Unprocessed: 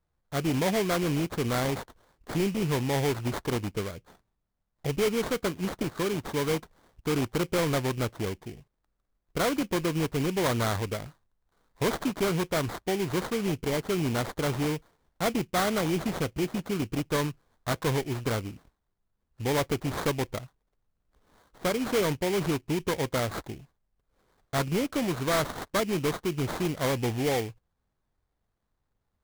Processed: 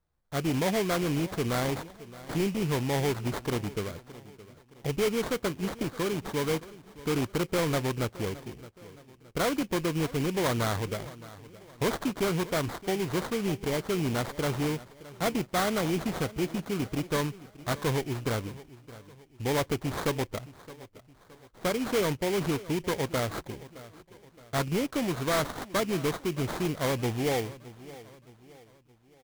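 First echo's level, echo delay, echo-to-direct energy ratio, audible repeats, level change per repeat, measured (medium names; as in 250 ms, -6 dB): -18.0 dB, 618 ms, -17.0 dB, 3, -7.5 dB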